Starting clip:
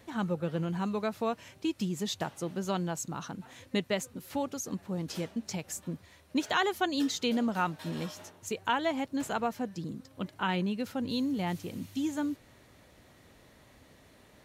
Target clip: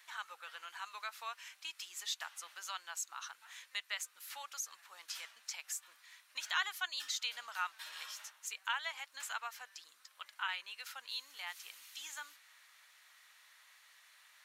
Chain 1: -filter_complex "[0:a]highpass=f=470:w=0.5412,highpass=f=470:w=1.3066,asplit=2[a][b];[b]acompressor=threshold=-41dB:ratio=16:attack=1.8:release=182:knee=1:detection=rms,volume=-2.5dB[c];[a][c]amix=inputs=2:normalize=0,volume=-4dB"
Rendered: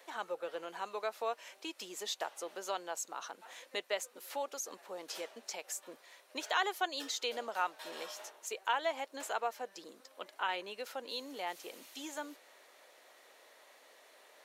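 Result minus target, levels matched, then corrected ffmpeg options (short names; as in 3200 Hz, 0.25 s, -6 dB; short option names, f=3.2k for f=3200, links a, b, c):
500 Hz band +19.5 dB
-filter_complex "[0:a]highpass=f=1.2k:w=0.5412,highpass=f=1.2k:w=1.3066,asplit=2[a][b];[b]acompressor=threshold=-41dB:ratio=16:attack=1.8:release=182:knee=1:detection=rms,volume=-2.5dB[c];[a][c]amix=inputs=2:normalize=0,volume=-4dB"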